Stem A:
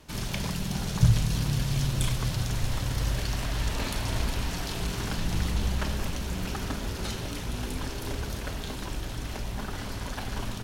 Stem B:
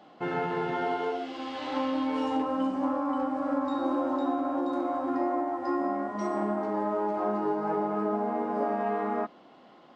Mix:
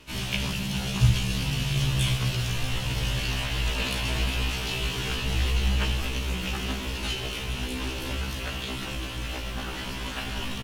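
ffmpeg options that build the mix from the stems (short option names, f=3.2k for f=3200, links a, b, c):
-filter_complex "[0:a]equalizer=f=2.8k:t=o:w=0.64:g=11.5,volume=2.5dB[a];[1:a]acrusher=samples=24:mix=1:aa=0.000001,aeval=exprs='val(0)*sin(2*PI*730*n/s)':c=same,adelay=1550,volume=-11.5dB[b];[a][b]amix=inputs=2:normalize=0,afftfilt=real='re*1.73*eq(mod(b,3),0)':imag='im*1.73*eq(mod(b,3),0)':win_size=2048:overlap=0.75"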